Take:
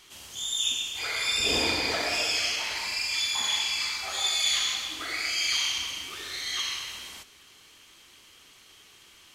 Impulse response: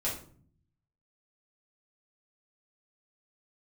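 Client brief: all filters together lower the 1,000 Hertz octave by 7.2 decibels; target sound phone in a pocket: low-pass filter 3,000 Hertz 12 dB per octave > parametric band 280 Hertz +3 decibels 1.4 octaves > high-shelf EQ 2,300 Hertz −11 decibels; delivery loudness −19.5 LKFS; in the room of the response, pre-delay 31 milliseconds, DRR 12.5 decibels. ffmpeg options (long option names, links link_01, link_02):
-filter_complex "[0:a]equalizer=frequency=1000:width_type=o:gain=-8,asplit=2[link_01][link_02];[1:a]atrim=start_sample=2205,adelay=31[link_03];[link_02][link_03]afir=irnorm=-1:irlink=0,volume=-18dB[link_04];[link_01][link_04]amix=inputs=2:normalize=0,lowpass=3000,equalizer=frequency=280:width_type=o:width=1.4:gain=3,highshelf=frequency=2300:gain=-11,volume=17.5dB"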